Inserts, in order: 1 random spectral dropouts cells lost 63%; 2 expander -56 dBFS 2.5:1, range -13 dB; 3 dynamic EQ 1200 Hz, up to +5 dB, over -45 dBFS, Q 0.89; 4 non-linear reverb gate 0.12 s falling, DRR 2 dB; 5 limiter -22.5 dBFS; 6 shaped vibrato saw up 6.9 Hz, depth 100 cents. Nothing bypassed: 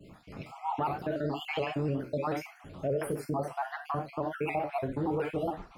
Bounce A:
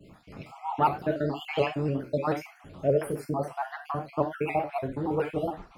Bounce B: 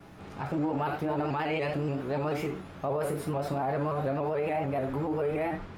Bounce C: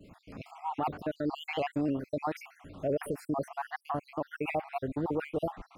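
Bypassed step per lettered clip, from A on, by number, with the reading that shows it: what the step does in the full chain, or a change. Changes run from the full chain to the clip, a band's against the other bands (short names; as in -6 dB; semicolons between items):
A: 5, crest factor change +6.5 dB; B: 1, 4 kHz band -3.0 dB; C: 4, 125 Hz band -3.0 dB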